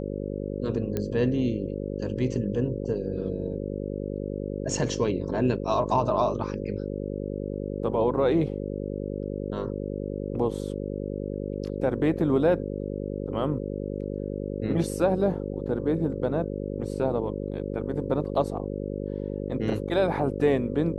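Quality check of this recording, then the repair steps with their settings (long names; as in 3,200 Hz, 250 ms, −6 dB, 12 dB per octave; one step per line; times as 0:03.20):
mains buzz 50 Hz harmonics 11 −32 dBFS
0:00.97: click −15 dBFS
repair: click removal
hum removal 50 Hz, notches 11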